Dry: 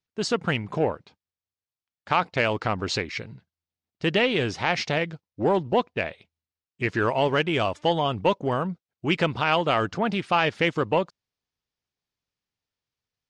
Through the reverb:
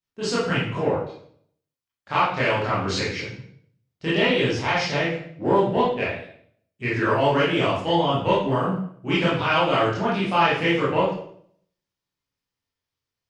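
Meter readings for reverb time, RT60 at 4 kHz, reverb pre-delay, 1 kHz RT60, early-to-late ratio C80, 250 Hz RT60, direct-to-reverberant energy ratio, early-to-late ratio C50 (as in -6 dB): 0.60 s, 0.55 s, 18 ms, 0.55 s, 6.5 dB, 0.70 s, -9.5 dB, 1.5 dB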